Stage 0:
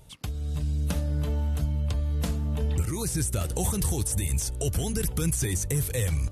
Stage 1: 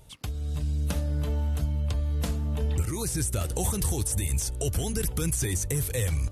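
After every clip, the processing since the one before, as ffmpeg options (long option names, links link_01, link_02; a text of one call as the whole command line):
ffmpeg -i in.wav -af "equalizer=frequency=170:width_type=o:width=0.73:gain=-3" out.wav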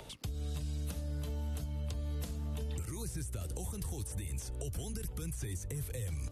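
ffmpeg -i in.wav -filter_complex "[0:a]acrossover=split=240|5000[link_01][link_02][link_03];[link_02]acompressor=mode=upward:threshold=-40dB:ratio=2.5[link_04];[link_01][link_04][link_03]amix=inputs=3:normalize=0,alimiter=limit=-21.5dB:level=0:latency=1:release=390,acrossover=split=140|550|3200[link_05][link_06][link_07][link_08];[link_05]acompressor=threshold=-37dB:ratio=4[link_09];[link_06]acompressor=threshold=-45dB:ratio=4[link_10];[link_07]acompressor=threshold=-55dB:ratio=4[link_11];[link_08]acompressor=threshold=-46dB:ratio=4[link_12];[link_09][link_10][link_11][link_12]amix=inputs=4:normalize=0,volume=-1dB" out.wav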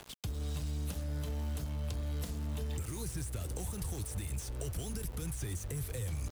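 ffmpeg -i in.wav -af "aeval=exprs='val(0)*gte(abs(val(0)),0.00531)':channel_layout=same,volume=1dB" out.wav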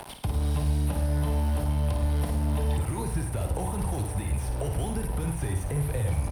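ffmpeg -i in.wav -filter_complex "[0:a]superequalizer=8b=1.78:9b=2.51:15b=0.501:16b=2.82,acrossover=split=2800[link_01][link_02];[link_02]acompressor=threshold=-52dB:ratio=4:attack=1:release=60[link_03];[link_01][link_03]amix=inputs=2:normalize=0,aecho=1:1:55|103:0.473|0.282,volume=9dB" out.wav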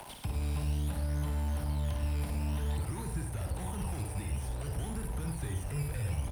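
ffmpeg -i in.wav -filter_complex "[0:a]aeval=exprs='val(0)+0.5*0.00708*sgn(val(0))':channel_layout=same,acrossover=split=330|810[link_01][link_02][link_03];[link_01]acrusher=samples=12:mix=1:aa=0.000001:lfo=1:lforange=12:lforate=0.55[link_04];[link_02]aeval=exprs='0.0106*(abs(mod(val(0)/0.0106+3,4)-2)-1)':channel_layout=same[link_05];[link_04][link_05][link_03]amix=inputs=3:normalize=0,volume=-7dB" out.wav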